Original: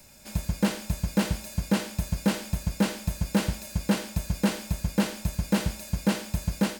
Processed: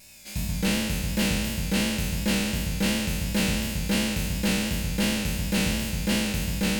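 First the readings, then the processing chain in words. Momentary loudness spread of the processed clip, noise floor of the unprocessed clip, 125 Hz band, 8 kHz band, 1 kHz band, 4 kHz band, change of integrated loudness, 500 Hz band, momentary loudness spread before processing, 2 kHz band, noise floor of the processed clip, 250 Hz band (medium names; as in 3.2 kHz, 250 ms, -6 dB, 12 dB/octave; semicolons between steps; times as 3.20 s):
2 LU, -45 dBFS, +1.0 dB, +6.0 dB, -0.5 dB, +8.0 dB, +3.0 dB, +0.5 dB, 5 LU, +6.5 dB, -36 dBFS, +1.5 dB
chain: spectral sustain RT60 1.92 s; vibrato 2.8 Hz 67 cents; resonant high shelf 1.7 kHz +7 dB, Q 1.5; trim -5.5 dB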